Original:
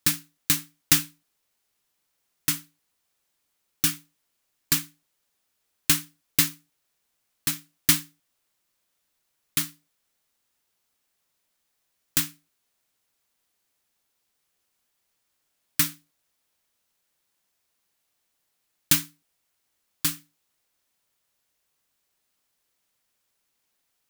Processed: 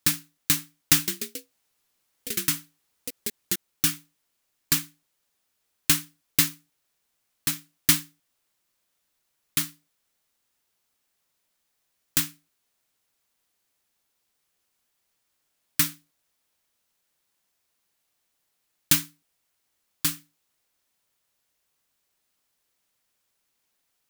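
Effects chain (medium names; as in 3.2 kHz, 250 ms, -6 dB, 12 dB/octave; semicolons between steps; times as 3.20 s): 0.94–3.89 s: ever faster or slower copies 137 ms, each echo +3 st, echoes 3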